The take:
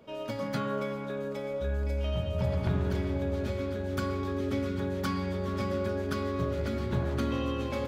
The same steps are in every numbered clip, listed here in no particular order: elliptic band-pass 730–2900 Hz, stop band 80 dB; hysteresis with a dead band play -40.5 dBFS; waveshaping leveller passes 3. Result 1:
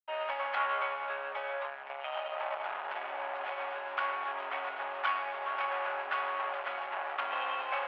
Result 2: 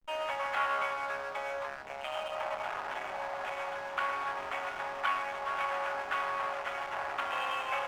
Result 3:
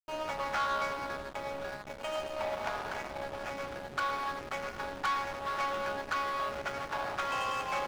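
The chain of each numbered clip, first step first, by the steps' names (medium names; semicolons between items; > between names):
hysteresis with a dead band > waveshaping leveller > elliptic band-pass; waveshaping leveller > elliptic band-pass > hysteresis with a dead band; elliptic band-pass > hysteresis with a dead band > waveshaping leveller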